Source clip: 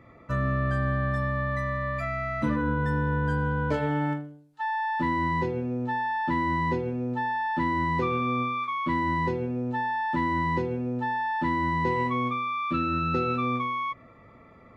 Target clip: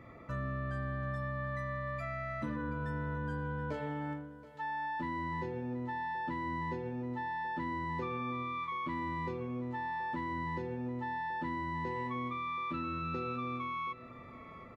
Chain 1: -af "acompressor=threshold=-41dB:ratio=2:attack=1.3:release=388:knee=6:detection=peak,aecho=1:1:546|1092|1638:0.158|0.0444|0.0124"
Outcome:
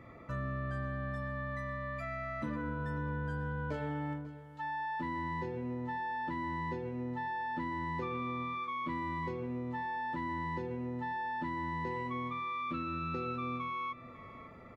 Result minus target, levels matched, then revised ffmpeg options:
echo 181 ms early
-af "acompressor=threshold=-41dB:ratio=2:attack=1.3:release=388:knee=6:detection=peak,aecho=1:1:727|1454|2181:0.158|0.0444|0.0124"

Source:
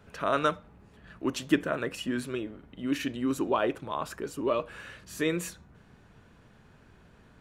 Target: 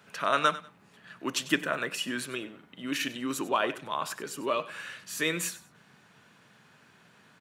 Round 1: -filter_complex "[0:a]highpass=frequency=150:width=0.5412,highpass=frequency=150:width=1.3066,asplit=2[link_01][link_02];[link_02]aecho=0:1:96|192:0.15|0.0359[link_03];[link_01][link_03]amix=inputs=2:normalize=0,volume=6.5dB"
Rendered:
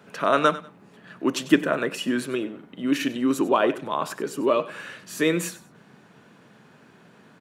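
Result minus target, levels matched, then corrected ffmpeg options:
250 Hz band +4.5 dB
-filter_complex "[0:a]highpass=frequency=150:width=0.5412,highpass=frequency=150:width=1.3066,equalizer=frequency=320:width=0.4:gain=-11.5,asplit=2[link_01][link_02];[link_02]aecho=0:1:96|192:0.15|0.0359[link_03];[link_01][link_03]amix=inputs=2:normalize=0,volume=6.5dB"

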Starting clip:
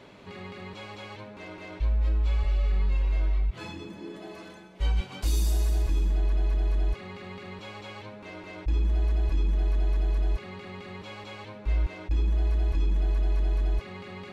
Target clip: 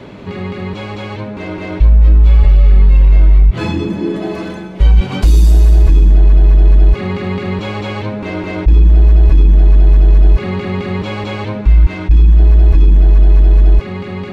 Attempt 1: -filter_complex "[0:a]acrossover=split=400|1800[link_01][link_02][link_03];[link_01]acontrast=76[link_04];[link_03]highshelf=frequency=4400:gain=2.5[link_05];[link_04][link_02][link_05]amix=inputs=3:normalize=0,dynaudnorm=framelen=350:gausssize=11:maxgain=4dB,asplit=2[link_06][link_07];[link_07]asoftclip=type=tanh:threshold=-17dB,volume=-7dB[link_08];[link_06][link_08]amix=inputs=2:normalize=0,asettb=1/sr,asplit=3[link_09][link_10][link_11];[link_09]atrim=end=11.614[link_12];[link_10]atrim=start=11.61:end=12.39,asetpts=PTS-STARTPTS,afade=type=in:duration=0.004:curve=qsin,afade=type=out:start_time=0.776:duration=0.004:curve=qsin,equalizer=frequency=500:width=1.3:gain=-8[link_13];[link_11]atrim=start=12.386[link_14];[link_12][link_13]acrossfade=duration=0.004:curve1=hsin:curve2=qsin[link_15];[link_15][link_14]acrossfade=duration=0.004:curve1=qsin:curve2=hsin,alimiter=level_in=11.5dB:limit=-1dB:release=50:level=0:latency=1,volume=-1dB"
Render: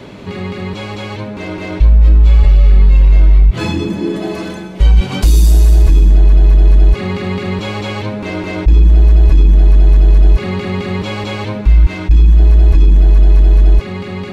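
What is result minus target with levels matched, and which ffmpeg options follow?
8,000 Hz band +6.5 dB
-filter_complex "[0:a]acrossover=split=400|1800[link_01][link_02][link_03];[link_01]acontrast=76[link_04];[link_03]highshelf=frequency=4400:gain=-6.5[link_05];[link_04][link_02][link_05]amix=inputs=3:normalize=0,dynaudnorm=framelen=350:gausssize=11:maxgain=4dB,asplit=2[link_06][link_07];[link_07]asoftclip=type=tanh:threshold=-17dB,volume=-7dB[link_08];[link_06][link_08]amix=inputs=2:normalize=0,asettb=1/sr,asplit=3[link_09][link_10][link_11];[link_09]atrim=end=11.614[link_12];[link_10]atrim=start=11.61:end=12.39,asetpts=PTS-STARTPTS,afade=type=in:duration=0.004:curve=qsin,afade=type=out:start_time=0.776:duration=0.004:curve=qsin,equalizer=frequency=500:width=1.3:gain=-8[link_13];[link_11]atrim=start=12.386[link_14];[link_12][link_13]acrossfade=duration=0.004:curve1=hsin:curve2=qsin[link_15];[link_15][link_14]acrossfade=duration=0.004:curve1=qsin:curve2=hsin,alimiter=level_in=11.5dB:limit=-1dB:release=50:level=0:latency=1,volume=-1dB"

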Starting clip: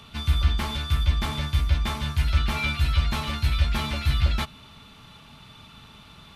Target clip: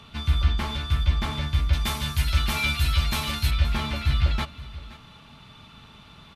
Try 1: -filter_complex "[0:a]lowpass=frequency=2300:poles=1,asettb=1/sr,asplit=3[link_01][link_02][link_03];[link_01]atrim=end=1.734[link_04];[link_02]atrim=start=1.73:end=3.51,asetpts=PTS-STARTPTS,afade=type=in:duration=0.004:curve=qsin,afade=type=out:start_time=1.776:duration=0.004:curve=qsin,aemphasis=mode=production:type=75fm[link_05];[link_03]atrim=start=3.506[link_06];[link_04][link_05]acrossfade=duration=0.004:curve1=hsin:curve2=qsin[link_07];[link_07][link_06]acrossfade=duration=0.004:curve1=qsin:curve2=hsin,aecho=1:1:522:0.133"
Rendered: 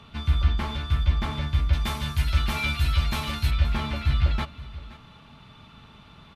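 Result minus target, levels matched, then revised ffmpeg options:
4,000 Hz band −3.0 dB
-filter_complex "[0:a]lowpass=frequency=5600:poles=1,asettb=1/sr,asplit=3[link_01][link_02][link_03];[link_01]atrim=end=1.734[link_04];[link_02]atrim=start=1.73:end=3.51,asetpts=PTS-STARTPTS,afade=type=in:duration=0.004:curve=qsin,afade=type=out:start_time=1.776:duration=0.004:curve=qsin,aemphasis=mode=production:type=75fm[link_05];[link_03]atrim=start=3.506[link_06];[link_04][link_05]acrossfade=duration=0.004:curve1=hsin:curve2=qsin[link_07];[link_07][link_06]acrossfade=duration=0.004:curve1=qsin:curve2=hsin,aecho=1:1:522:0.133"

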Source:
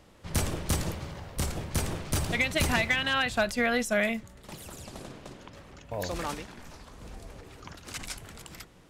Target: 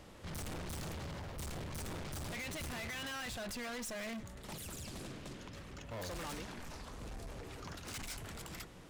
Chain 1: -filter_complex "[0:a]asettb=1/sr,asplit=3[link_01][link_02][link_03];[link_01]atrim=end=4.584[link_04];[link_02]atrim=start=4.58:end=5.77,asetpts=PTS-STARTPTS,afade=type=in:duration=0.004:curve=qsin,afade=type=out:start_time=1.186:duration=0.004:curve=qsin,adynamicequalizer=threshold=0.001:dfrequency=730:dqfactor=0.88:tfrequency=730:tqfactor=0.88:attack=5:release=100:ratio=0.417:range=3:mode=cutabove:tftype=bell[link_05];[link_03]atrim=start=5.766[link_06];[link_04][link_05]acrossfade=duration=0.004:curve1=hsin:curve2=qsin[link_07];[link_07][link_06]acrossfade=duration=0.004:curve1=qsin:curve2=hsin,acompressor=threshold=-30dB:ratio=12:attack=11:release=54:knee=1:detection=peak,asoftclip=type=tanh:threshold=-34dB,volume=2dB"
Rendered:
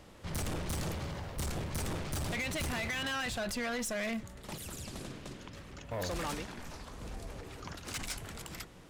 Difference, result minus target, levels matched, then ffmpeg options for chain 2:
soft clipping: distortion −6 dB
-filter_complex "[0:a]asettb=1/sr,asplit=3[link_01][link_02][link_03];[link_01]atrim=end=4.584[link_04];[link_02]atrim=start=4.58:end=5.77,asetpts=PTS-STARTPTS,afade=type=in:duration=0.004:curve=qsin,afade=type=out:start_time=1.186:duration=0.004:curve=qsin,adynamicequalizer=threshold=0.001:dfrequency=730:dqfactor=0.88:tfrequency=730:tqfactor=0.88:attack=5:release=100:ratio=0.417:range=3:mode=cutabove:tftype=bell[link_05];[link_03]atrim=start=5.766[link_06];[link_04][link_05]acrossfade=duration=0.004:curve1=hsin:curve2=qsin[link_07];[link_07][link_06]acrossfade=duration=0.004:curve1=qsin:curve2=hsin,acompressor=threshold=-30dB:ratio=12:attack=11:release=54:knee=1:detection=peak,asoftclip=type=tanh:threshold=-43dB,volume=2dB"

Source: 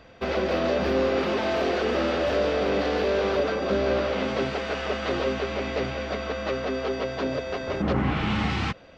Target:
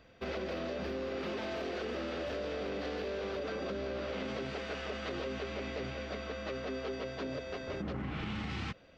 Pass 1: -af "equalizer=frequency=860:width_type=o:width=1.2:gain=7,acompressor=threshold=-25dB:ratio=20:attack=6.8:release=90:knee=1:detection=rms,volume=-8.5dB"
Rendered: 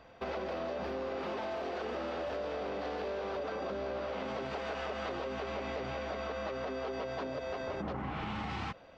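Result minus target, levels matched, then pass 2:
1,000 Hz band +5.0 dB
-af "equalizer=frequency=860:width_type=o:width=1.2:gain=-4,acompressor=threshold=-25dB:ratio=20:attack=6.8:release=90:knee=1:detection=rms,volume=-8.5dB"

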